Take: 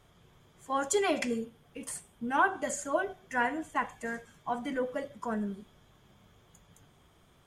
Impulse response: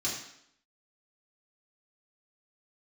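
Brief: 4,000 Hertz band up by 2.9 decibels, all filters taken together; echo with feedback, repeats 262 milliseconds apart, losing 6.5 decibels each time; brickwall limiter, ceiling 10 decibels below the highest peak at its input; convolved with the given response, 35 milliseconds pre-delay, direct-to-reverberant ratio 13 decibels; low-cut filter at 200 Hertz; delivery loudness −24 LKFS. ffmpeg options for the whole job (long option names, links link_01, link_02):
-filter_complex "[0:a]highpass=200,equalizer=frequency=4000:width_type=o:gain=4,alimiter=limit=-23dB:level=0:latency=1,aecho=1:1:262|524|786|1048|1310|1572:0.473|0.222|0.105|0.0491|0.0231|0.0109,asplit=2[link_01][link_02];[1:a]atrim=start_sample=2205,adelay=35[link_03];[link_02][link_03]afir=irnorm=-1:irlink=0,volume=-18.5dB[link_04];[link_01][link_04]amix=inputs=2:normalize=0,volume=10dB"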